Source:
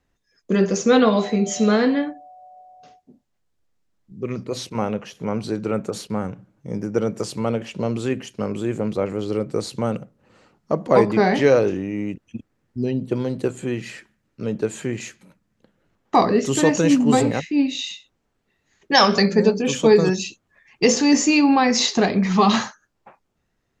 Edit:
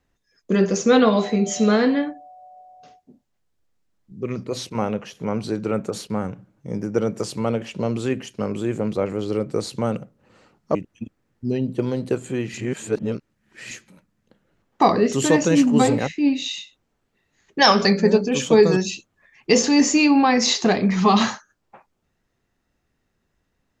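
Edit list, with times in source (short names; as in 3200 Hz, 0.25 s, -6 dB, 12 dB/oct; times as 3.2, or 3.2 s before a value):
10.75–12.08 cut
13.87–15.04 reverse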